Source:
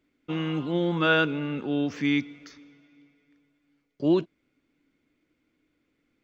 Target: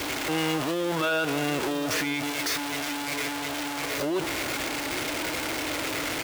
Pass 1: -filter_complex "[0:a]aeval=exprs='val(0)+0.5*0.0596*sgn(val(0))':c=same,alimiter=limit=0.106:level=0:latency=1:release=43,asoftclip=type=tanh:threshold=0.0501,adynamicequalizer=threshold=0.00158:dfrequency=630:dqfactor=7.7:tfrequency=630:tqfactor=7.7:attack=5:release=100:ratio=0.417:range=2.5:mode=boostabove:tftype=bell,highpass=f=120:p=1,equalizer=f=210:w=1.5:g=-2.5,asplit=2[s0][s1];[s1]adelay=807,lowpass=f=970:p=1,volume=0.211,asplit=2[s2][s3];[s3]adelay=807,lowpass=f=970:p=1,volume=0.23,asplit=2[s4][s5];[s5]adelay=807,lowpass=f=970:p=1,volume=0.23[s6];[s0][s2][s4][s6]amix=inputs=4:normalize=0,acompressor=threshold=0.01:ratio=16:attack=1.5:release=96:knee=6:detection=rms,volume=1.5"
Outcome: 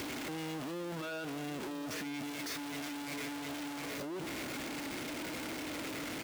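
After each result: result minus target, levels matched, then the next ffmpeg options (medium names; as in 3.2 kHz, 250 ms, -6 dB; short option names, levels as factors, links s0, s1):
compression: peak gain reduction +14.5 dB; saturation: distortion +18 dB; 250 Hz band +3.0 dB
-filter_complex "[0:a]aeval=exprs='val(0)+0.5*0.0596*sgn(val(0))':c=same,alimiter=limit=0.106:level=0:latency=1:release=43,asoftclip=type=tanh:threshold=0.0501,adynamicequalizer=threshold=0.00158:dfrequency=630:dqfactor=7.7:tfrequency=630:tqfactor=7.7:attack=5:release=100:ratio=0.417:range=2.5:mode=boostabove:tftype=bell,highpass=f=120:p=1,equalizer=f=210:w=1.5:g=-2.5,asplit=2[s0][s1];[s1]adelay=807,lowpass=f=970:p=1,volume=0.211,asplit=2[s2][s3];[s3]adelay=807,lowpass=f=970:p=1,volume=0.23,asplit=2[s4][s5];[s5]adelay=807,lowpass=f=970:p=1,volume=0.23[s6];[s0][s2][s4][s6]amix=inputs=4:normalize=0,volume=1.5"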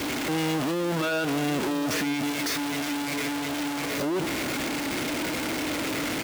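saturation: distortion +18 dB; 250 Hz band +3.0 dB
-filter_complex "[0:a]aeval=exprs='val(0)+0.5*0.0596*sgn(val(0))':c=same,alimiter=limit=0.106:level=0:latency=1:release=43,asoftclip=type=tanh:threshold=0.188,adynamicequalizer=threshold=0.00158:dfrequency=630:dqfactor=7.7:tfrequency=630:tqfactor=7.7:attack=5:release=100:ratio=0.417:range=2.5:mode=boostabove:tftype=bell,highpass=f=120:p=1,equalizer=f=210:w=1.5:g=-2.5,asplit=2[s0][s1];[s1]adelay=807,lowpass=f=970:p=1,volume=0.211,asplit=2[s2][s3];[s3]adelay=807,lowpass=f=970:p=1,volume=0.23,asplit=2[s4][s5];[s5]adelay=807,lowpass=f=970:p=1,volume=0.23[s6];[s0][s2][s4][s6]amix=inputs=4:normalize=0,volume=1.5"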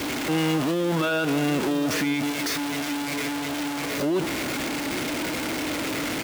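250 Hz band +3.5 dB
-filter_complex "[0:a]aeval=exprs='val(0)+0.5*0.0596*sgn(val(0))':c=same,alimiter=limit=0.106:level=0:latency=1:release=43,asoftclip=type=tanh:threshold=0.188,adynamicequalizer=threshold=0.00158:dfrequency=630:dqfactor=7.7:tfrequency=630:tqfactor=7.7:attack=5:release=100:ratio=0.417:range=2.5:mode=boostabove:tftype=bell,highpass=f=120:p=1,equalizer=f=210:w=1.5:g=-14.5,asplit=2[s0][s1];[s1]adelay=807,lowpass=f=970:p=1,volume=0.211,asplit=2[s2][s3];[s3]adelay=807,lowpass=f=970:p=1,volume=0.23,asplit=2[s4][s5];[s5]adelay=807,lowpass=f=970:p=1,volume=0.23[s6];[s0][s2][s4][s6]amix=inputs=4:normalize=0,volume=1.5"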